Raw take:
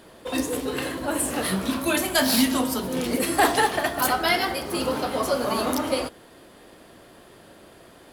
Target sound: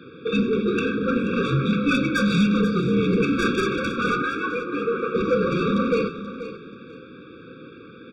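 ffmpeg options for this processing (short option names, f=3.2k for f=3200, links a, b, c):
-filter_complex "[0:a]highpass=f=170:t=q:w=0.5412,highpass=f=170:t=q:w=1.307,lowpass=f=3.6k:t=q:w=0.5176,lowpass=f=3.6k:t=q:w=0.7071,lowpass=f=3.6k:t=q:w=1.932,afreqshift=-55,asoftclip=type=tanh:threshold=-22.5dB,asettb=1/sr,asplit=3[a][b][c];[a]atrim=end=4.224[d];[b]atrim=start=4.22:end=5.15,asetpts=PTS-STARTPTS,afade=t=in:d=0.004:c=qsin,afade=t=out:st=0.926:d=0.004:c=qsin,acrossover=split=330 2700:gain=0.2 1 0.112[e][f][g];[e][f][g]amix=inputs=3:normalize=0[h];[c]atrim=start=5.146[i];[d][h]acrossfade=d=0.004:c1=hsin:c2=qsin[j];[j][i]acrossfade=d=0.004:c1=qsin:c2=hsin,asplit=2[k][l];[l]aecho=0:1:482|964|1446:0.237|0.0545|0.0125[m];[k][m]amix=inputs=2:normalize=0,afftfilt=real='re*eq(mod(floor(b*sr/1024/550),2),0)':imag='im*eq(mod(floor(b*sr/1024/550),2),0)':win_size=1024:overlap=0.75,volume=8.5dB"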